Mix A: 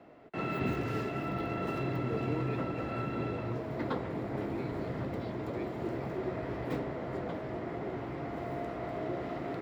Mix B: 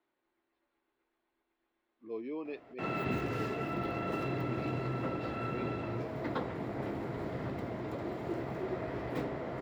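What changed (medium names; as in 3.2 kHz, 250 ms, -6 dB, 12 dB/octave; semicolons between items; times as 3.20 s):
background: entry +2.45 s; master: add bass shelf 360 Hz -2.5 dB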